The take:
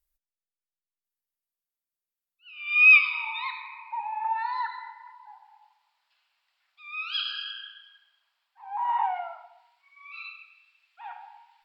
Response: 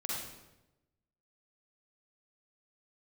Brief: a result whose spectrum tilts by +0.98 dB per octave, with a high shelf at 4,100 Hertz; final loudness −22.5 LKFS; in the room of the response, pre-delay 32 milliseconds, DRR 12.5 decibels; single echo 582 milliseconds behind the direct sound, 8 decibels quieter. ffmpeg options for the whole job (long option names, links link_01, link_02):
-filter_complex "[0:a]highshelf=frequency=4100:gain=-4,aecho=1:1:582:0.398,asplit=2[link_01][link_02];[1:a]atrim=start_sample=2205,adelay=32[link_03];[link_02][link_03]afir=irnorm=-1:irlink=0,volume=-15.5dB[link_04];[link_01][link_04]amix=inputs=2:normalize=0,volume=2dB"